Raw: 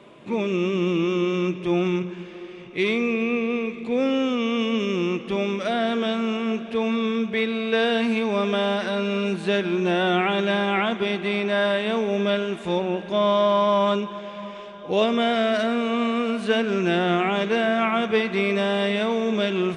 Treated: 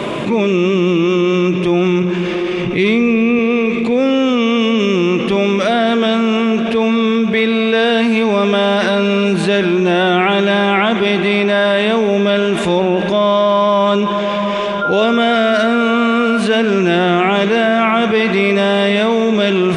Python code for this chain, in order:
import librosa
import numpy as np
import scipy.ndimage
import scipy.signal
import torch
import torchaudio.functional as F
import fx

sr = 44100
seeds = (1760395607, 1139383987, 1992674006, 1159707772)

y = fx.bass_treble(x, sr, bass_db=8, treble_db=-1, at=(2.63, 3.39))
y = fx.dmg_tone(y, sr, hz=1400.0, level_db=-29.0, at=(14.81, 16.38), fade=0.02)
y = fx.env_flatten(y, sr, amount_pct=70)
y = y * 10.0 ** (5.5 / 20.0)